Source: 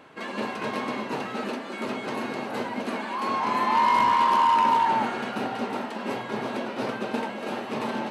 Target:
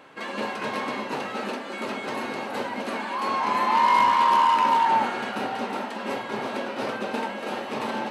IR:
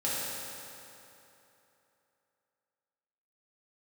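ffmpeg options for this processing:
-filter_complex "[0:a]lowshelf=f=290:g=-6.5,asettb=1/sr,asplit=3[a][b][c];[a]atrim=end=2.044[d];[b]atrim=start=2.04:end=2.49,asetpts=PTS-STARTPTS,afade=t=in:d=0.004:c=qsin,afade=t=out:st=0.446:d=0.004:c=qsin,volume=25dB,asoftclip=hard,volume=-25dB[e];[c]atrim=start=2.486[f];[d][e]acrossfade=d=0.004:c1=hsin:c2=qsin[g];[g][f]acrossfade=d=0.004:c1=qsin:c2=hsin,asplit=2[h][i];[1:a]atrim=start_sample=2205,atrim=end_sample=3528[j];[i][j]afir=irnorm=-1:irlink=0,volume=-12dB[k];[h][k]amix=inputs=2:normalize=0"

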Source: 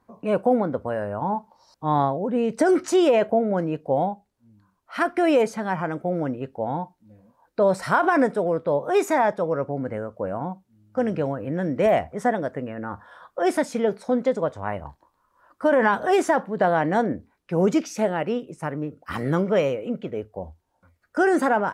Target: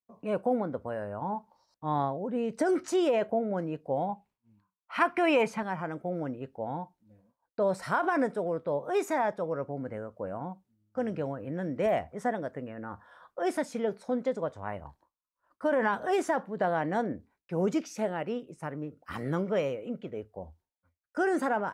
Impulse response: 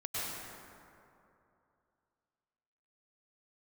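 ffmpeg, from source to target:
-filter_complex "[0:a]agate=range=-33dB:threshold=-50dB:ratio=3:detection=peak,asettb=1/sr,asplit=3[a][b][c];[a]atrim=end=4.094[d];[b]atrim=start=4.09:end=5.63,asetpts=PTS-STARTPTS,afade=t=in:d=0.004:c=qsin,afade=t=out:st=1.536:d=0.004:c=qsin,equalizer=f=160:t=o:w=0.67:g=8,equalizer=f=1k:t=o:w=0.67:g=10,equalizer=f=2.5k:t=o:w=0.67:g=11[e];[c]atrim=start=5.626[f];[d][e]acrossfade=d=0.004:c1=hsin:c2=qsin[g];[g][f]acrossfade=d=0.004:c1=qsin:c2=hsin,volume=-8dB"

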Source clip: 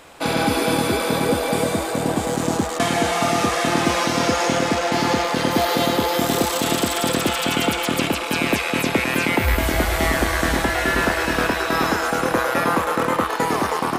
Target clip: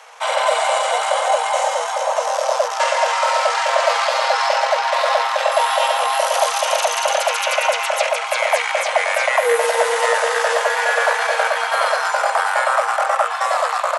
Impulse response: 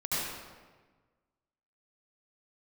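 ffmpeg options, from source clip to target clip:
-af "asetrate=32097,aresample=44100,atempo=1.37395,afreqshift=430,volume=2.5dB"

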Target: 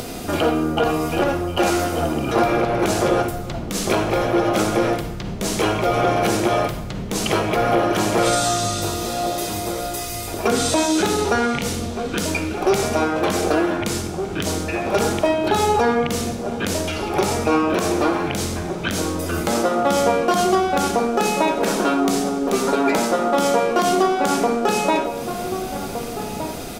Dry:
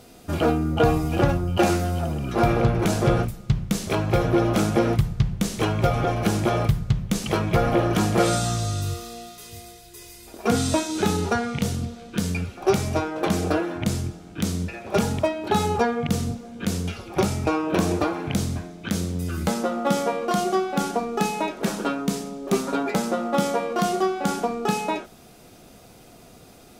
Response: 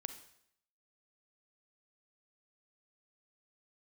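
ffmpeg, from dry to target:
-filter_complex "[0:a]asplit=2[a][b];[b]acompressor=threshold=-34dB:ratio=6,volume=2dB[c];[a][c]amix=inputs=2:normalize=0,alimiter=limit=-13dB:level=0:latency=1:release=69,acompressor=mode=upward:threshold=-30dB:ratio=2.5,acrossover=split=260[d][e];[d]asoftclip=type=hard:threshold=-36dB[f];[f][e]amix=inputs=2:normalize=0,asplit=2[g][h];[h]adelay=1516,volume=-8dB,highshelf=f=4k:g=-34.1[i];[g][i]amix=inputs=2:normalize=0[j];[1:a]atrim=start_sample=2205[k];[j][k]afir=irnorm=-1:irlink=0,volume=8.5dB"

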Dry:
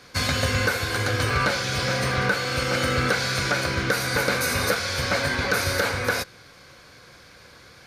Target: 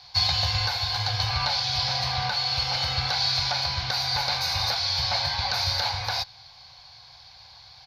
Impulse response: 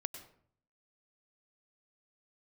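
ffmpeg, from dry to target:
-af "firequalizer=gain_entry='entry(110,0);entry(240,-22);entry(440,-21);entry(790,10);entry(1300,-10);entry(4400,11);entry(8200,-19);entry(15000,-6)':delay=0.05:min_phase=1,volume=-2.5dB"

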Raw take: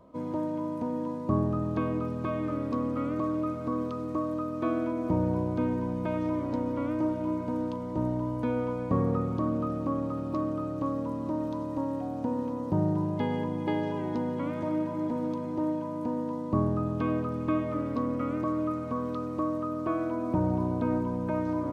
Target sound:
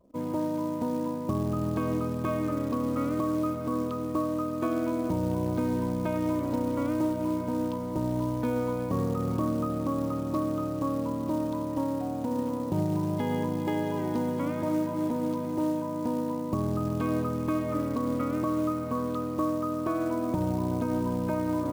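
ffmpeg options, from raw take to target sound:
-af "alimiter=limit=-21dB:level=0:latency=1:release=139,anlmdn=0.00631,acrusher=bits=6:mode=log:mix=0:aa=0.000001,volume=2dB"

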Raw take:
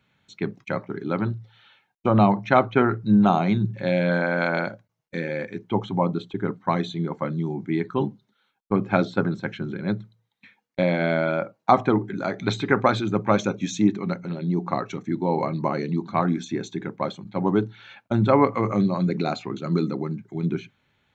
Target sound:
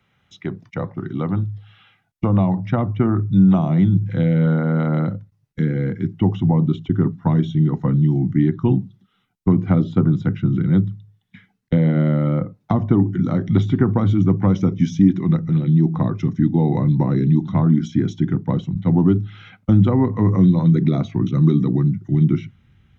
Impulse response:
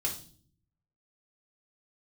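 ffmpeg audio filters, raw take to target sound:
-filter_complex "[0:a]asetrate=40572,aresample=44100,acrossover=split=260|1100[a][b][c];[a]acompressor=threshold=-33dB:ratio=4[d];[b]acompressor=threshold=-23dB:ratio=4[e];[c]acompressor=threshold=-42dB:ratio=4[f];[d][e][f]amix=inputs=3:normalize=0,asubboost=boost=9:cutoff=190,volume=2.5dB"

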